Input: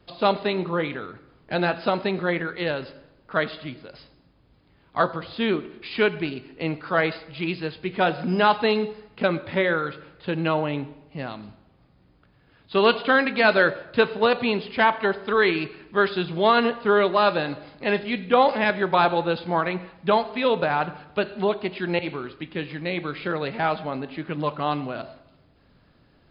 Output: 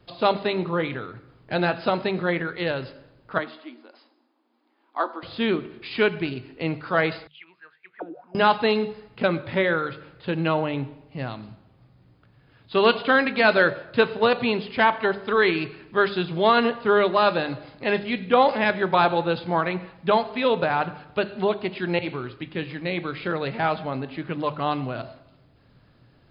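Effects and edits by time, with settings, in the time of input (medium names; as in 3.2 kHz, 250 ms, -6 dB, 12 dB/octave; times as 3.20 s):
3.38–5.23 s: rippled Chebyshev high-pass 230 Hz, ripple 9 dB
7.27–8.35 s: auto-wah 300–3900 Hz, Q 12, down, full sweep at -17 dBFS
whole clip: peaking EQ 120 Hz +9 dB 0.42 oct; hum notches 50/100/150/200 Hz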